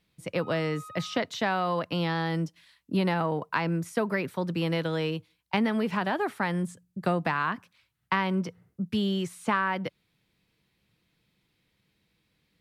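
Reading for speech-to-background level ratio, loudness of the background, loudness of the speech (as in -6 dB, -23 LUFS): 17.0 dB, -46.5 LUFS, -29.5 LUFS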